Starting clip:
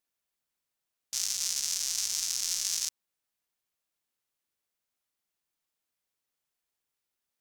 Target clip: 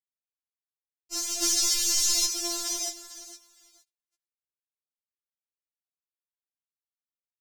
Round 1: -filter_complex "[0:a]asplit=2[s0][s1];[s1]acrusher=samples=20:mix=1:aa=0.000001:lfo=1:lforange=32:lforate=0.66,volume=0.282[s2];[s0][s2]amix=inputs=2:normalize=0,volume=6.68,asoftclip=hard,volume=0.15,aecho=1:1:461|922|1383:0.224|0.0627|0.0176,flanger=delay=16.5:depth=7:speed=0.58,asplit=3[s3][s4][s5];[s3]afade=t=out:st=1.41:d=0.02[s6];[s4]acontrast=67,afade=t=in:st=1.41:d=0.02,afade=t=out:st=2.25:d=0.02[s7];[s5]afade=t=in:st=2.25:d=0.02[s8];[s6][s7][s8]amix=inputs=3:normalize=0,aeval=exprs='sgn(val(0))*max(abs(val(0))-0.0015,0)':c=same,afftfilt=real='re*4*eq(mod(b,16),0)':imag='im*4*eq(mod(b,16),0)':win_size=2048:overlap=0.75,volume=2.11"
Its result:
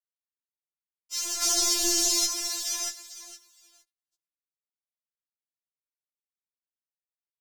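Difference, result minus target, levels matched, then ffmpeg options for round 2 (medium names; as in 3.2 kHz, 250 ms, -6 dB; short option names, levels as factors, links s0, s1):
decimation with a swept rate: distortion -10 dB
-filter_complex "[0:a]asplit=2[s0][s1];[s1]acrusher=samples=70:mix=1:aa=0.000001:lfo=1:lforange=112:lforate=0.66,volume=0.282[s2];[s0][s2]amix=inputs=2:normalize=0,volume=6.68,asoftclip=hard,volume=0.15,aecho=1:1:461|922|1383:0.224|0.0627|0.0176,flanger=delay=16.5:depth=7:speed=0.58,asplit=3[s3][s4][s5];[s3]afade=t=out:st=1.41:d=0.02[s6];[s4]acontrast=67,afade=t=in:st=1.41:d=0.02,afade=t=out:st=2.25:d=0.02[s7];[s5]afade=t=in:st=2.25:d=0.02[s8];[s6][s7][s8]amix=inputs=3:normalize=0,aeval=exprs='sgn(val(0))*max(abs(val(0))-0.0015,0)':c=same,afftfilt=real='re*4*eq(mod(b,16),0)':imag='im*4*eq(mod(b,16),0)':win_size=2048:overlap=0.75,volume=2.11"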